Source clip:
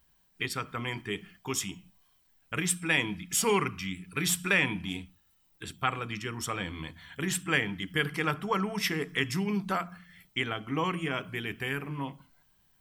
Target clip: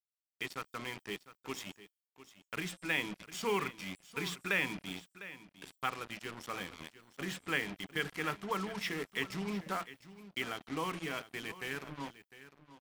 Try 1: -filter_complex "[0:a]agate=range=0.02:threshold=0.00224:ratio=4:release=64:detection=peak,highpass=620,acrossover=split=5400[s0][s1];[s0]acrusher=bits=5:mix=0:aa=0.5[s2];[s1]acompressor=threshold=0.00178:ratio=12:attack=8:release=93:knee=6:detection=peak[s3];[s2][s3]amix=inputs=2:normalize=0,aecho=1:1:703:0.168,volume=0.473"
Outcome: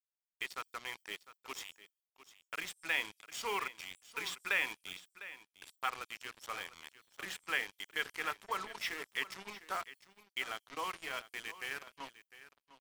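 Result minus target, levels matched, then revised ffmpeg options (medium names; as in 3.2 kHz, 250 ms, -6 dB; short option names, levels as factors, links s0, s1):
250 Hz band -13.5 dB
-filter_complex "[0:a]agate=range=0.02:threshold=0.00224:ratio=4:release=64:detection=peak,highpass=180,acrossover=split=5400[s0][s1];[s0]acrusher=bits=5:mix=0:aa=0.5[s2];[s1]acompressor=threshold=0.00178:ratio=12:attack=8:release=93:knee=6:detection=peak[s3];[s2][s3]amix=inputs=2:normalize=0,aecho=1:1:703:0.168,volume=0.473"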